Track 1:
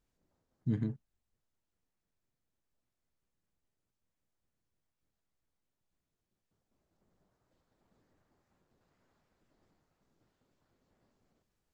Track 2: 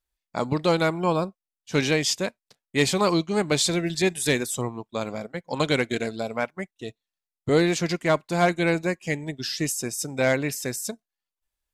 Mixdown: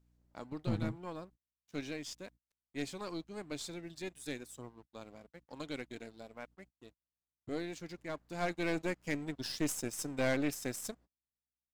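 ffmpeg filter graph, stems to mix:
-filter_complex "[0:a]aeval=exprs='val(0)+0.000398*(sin(2*PI*60*n/s)+sin(2*PI*2*60*n/s)/2+sin(2*PI*3*60*n/s)/3+sin(2*PI*4*60*n/s)/4+sin(2*PI*5*60*n/s)/5)':c=same,volume=0.5dB[a];[1:a]equalizer=f=290:w=4.8:g=7.5,aeval=exprs='sgn(val(0))*max(abs(val(0))-0.0075,0)':c=same,volume=-6dB,afade=t=in:st=8.19:d=0.69:silence=0.266073,asplit=2[b][c];[c]apad=whole_len=517688[d];[a][d]sidechaingate=range=-33dB:threshold=-54dB:ratio=16:detection=peak[e];[e][b]amix=inputs=2:normalize=0,aeval=exprs='(tanh(20*val(0)+0.6)-tanh(0.6))/20':c=same"

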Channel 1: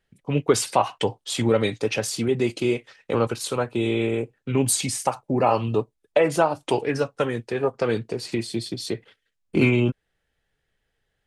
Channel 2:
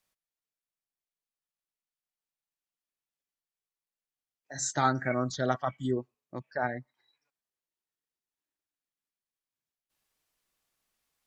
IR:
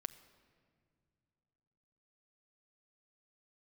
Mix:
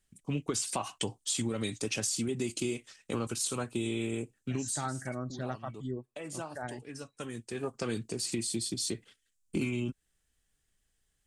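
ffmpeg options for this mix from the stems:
-filter_complex "[0:a]equalizer=f=1.1k:w=6.5:g=6,acrossover=split=5700[a][b];[b]acompressor=threshold=-40dB:ratio=4:attack=1:release=60[c];[a][c]amix=inputs=2:normalize=0,equalizer=f=125:t=o:w=1:g=-6,equalizer=f=500:t=o:w=1:g=-11,equalizer=f=1k:t=o:w=1:g=-10,equalizer=f=2k:t=o:w=1:g=-6,equalizer=f=4k:t=o:w=1:g=-4,equalizer=f=8k:t=o:w=1:g=12,volume=0dB[d];[1:a]lowshelf=f=170:g=9.5,volume=-10dB,asplit=2[e][f];[f]apad=whole_len=496979[g];[d][g]sidechaincompress=threshold=-47dB:ratio=8:attack=8.4:release=1020[h];[h][e]amix=inputs=2:normalize=0,acompressor=threshold=-28dB:ratio=12"

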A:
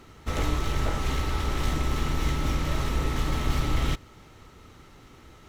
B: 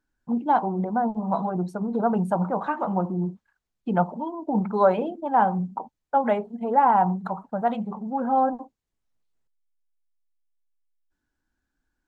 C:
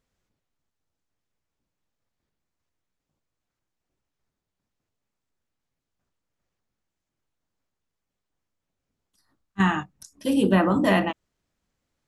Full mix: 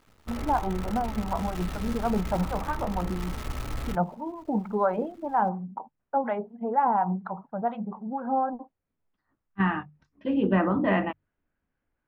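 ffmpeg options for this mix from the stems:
-filter_complex "[0:a]lowpass=1.7k,equalizer=f=340:w=4.6:g=-5.5,acrusher=bits=6:dc=4:mix=0:aa=0.000001,volume=-7.5dB[a];[1:a]lowpass=2k,acrossover=split=800[b][c];[b]aeval=exprs='val(0)*(1-0.7/2+0.7/2*cos(2*PI*4.2*n/s))':c=same[d];[c]aeval=exprs='val(0)*(1-0.7/2-0.7/2*cos(2*PI*4.2*n/s))':c=same[e];[d][e]amix=inputs=2:normalize=0,volume=-1dB[f];[2:a]lowpass=f=2.5k:w=0.5412,lowpass=f=2.5k:w=1.3066,volume=-3.5dB[g];[a][f][g]amix=inputs=3:normalize=0,bandreject=f=50:t=h:w=6,bandreject=f=100:t=h:w=6,bandreject=f=150:t=h:w=6"

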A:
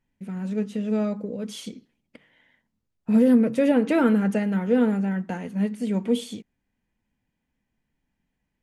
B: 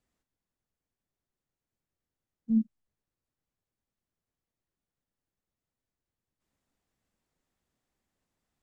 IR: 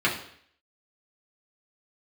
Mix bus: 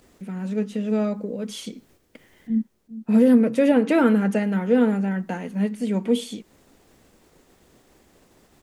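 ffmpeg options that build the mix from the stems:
-filter_complex "[0:a]highpass=160,volume=2.5dB,asplit=2[a][b];[1:a]equalizer=f=390:t=o:w=1.3:g=8,acompressor=mode=upward:threshold=-34dB:ratio=2.5,volume=-0.5dB,asplit=2[c][d];[d]volume=-14dB[e];[b]apad=whole_len=380532[f];[c][f]sidechaincompress=threshold=-37dB:ratio=8:attack=5.6:release=232[g];[e]aecho=0:1:408|816|1224|1632|2040|2448|2856|3264|3672:1|0.58|0.336|0.195|0.113|0.0656|0.0381|0.0221|0.0128[h];[a][g][h]amix=inputs=3:normalize=0,agate=range=-7dB:threshold=-56dB:ratio=16:detection=peak"

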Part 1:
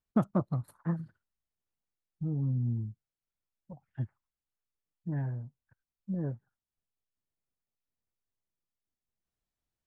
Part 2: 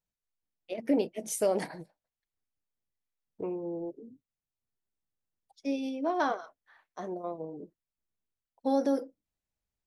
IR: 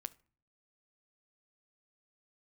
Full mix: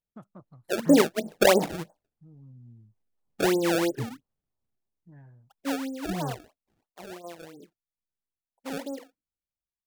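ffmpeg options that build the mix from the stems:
-filter_complex "[0:a]tiltshelf=f=970:g=-3.5,volume=0.5dB[a];[1:a]lowpass=f=1.1k:w=0.5412,lowpass=f=1.1k:w=1.3066,dynaudnorm=f=150:g=5:m=12dB,acrusher=samples=25:mix=1:aa=0.000001:lfo=1:lforange=40:lforate=3,volume=-3dB,afade=t=out:st=4.31:d=0.64:silence=0.316228,afade=t=out:st=5.82:d=0.32:silence=0.473151,asplit=2[b][c];[c]apad=whole_len=434873[d];[a][d]sidechaingate=range=-18dB:threshold=-42dB:ratio=16:detection=peak[e];[e][b]amix=inputs=2:normalize=0,dynaudnorm=f=360:g=13:m=3dB"

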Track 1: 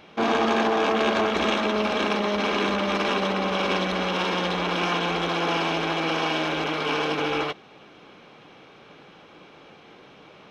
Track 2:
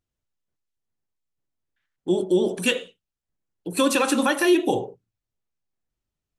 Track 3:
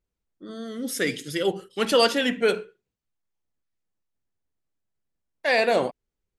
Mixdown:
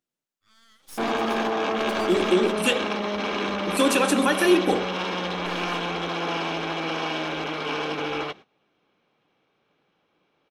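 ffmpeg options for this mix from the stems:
-filter_complex "[0:a]agate=range=-18dB:threshold=-40dB:ratio=16:detection=peak,adelay=800,volume=-3dB[a];[1:a]highpass=f=170:w=0.5412,highpass=f=170:w=1.3066,volume=-0.5dB[b];[2:a]highpass=f=1.1k:w=0.5412,highpass=f=1.1k:w=1.3066,alimiter=limit=-20.5dB:level=0:latency=1:release=103,aeval=exprs='max(val(0),0)':c=same,volume=-6.5dB[c];[a][b][c]amix=inputs=3:normalize=0"

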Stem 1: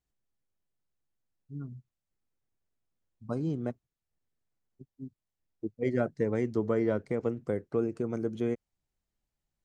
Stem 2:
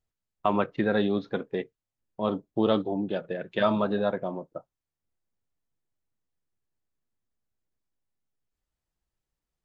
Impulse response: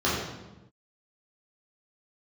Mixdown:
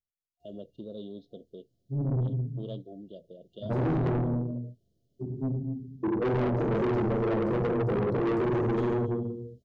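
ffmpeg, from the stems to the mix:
-filter_complex "[0:a]tiltshelf=f=1.3k:g=3,acompressor=threshold=-30dB:ratio=6,adelay=400,volume=2dB,asplit=2[a][b];[b]volume=-5dB[c];[1:a]volume=-15.5dB[d];[2:a]atrim=start_sample=2205[e];[c][e]afir=irnorm=-1:irlink=0[f];[a][d][f]amix=inputs=3:normalize=0,afftfilt=real='re*(1-between(b*sr/4096,700,2800))':imag='im*(1-between(b*sr/4096,700,2800))':win_size=4096:overlap=0.75,asoftclip=type=tanh:threshold=-24.5dB"

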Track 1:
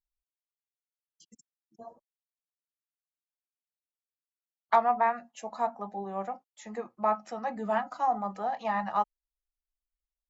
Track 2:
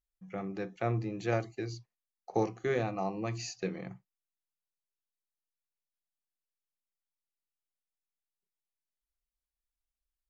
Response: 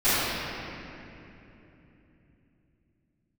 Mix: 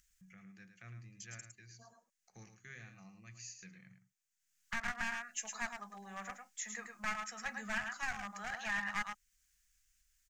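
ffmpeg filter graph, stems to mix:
-filter_complex "[0:a]highpass=350,volume=-1.5dB,asplit=2[a][b];[b]volume=-6dB[c];[1:a]acompressor=mode=upward:threshold=-35dB:ratio=2.5,volume=-18dB,asplit=2[d][e];[e]volume=-9dB[f];[c][f]amix=inputs=2:normalize=0,aecho=0:1:108:1[g];[a][d][g]amix=inputs=3:normalize=0,aeval=exprs='clip(val(0),-1,0.0316)':c=same,firequalizer=gain_entry='entry(200,0);entry(280,-13);entry(410,-18);entry(900,-13);entry(1600,7);entry(3900,1);entry(6600,13);entry(10000,2)':delay=0.05:min_phase=1,alimiter=level_in=2dB:limit=-24dB:level=0:latency=1:release=430,volume=-2dB"

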